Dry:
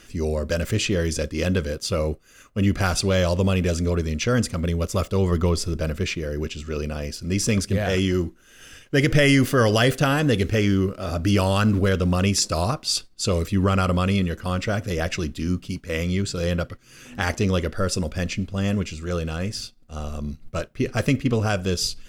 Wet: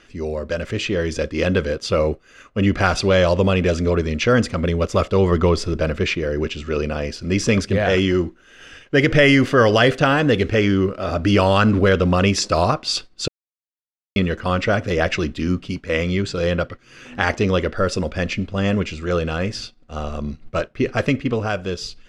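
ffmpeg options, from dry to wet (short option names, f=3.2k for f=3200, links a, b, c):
-filter_complex "[0:a]asplit=3[a][b][c];[a]atrim=end=13.28,asetpts=PTS-STARTPTS,afade=t=out:st=13.276:d=0.004:c=hsin[d];[b]atrim=start=13.28:end=14.16,asetpts=PTS-STARTPTS,volume=0[e];[c]atrim=start=14.16,asetpts=PTS-STARTPTS,afade=t=in:d=0.004:c=hsin[f];[d][e][f]concat=n=3:v=0:a=1,lowpass=6.6k,bass=f=250:g=-6,treble=f=4k:g=-8,dynaudnorm=f=140:g=17:m=7dB,volume=1dB"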